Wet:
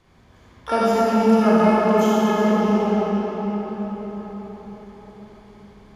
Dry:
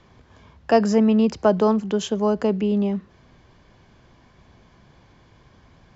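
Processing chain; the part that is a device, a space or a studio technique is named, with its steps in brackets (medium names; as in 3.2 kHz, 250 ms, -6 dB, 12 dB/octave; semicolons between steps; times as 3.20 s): shimmer-style reverb (harmony voices +12 st -6 dB; reverberation RT60 5.4 s, pre-delay 31 ms, DRR -9 dB); trim -7.5 dB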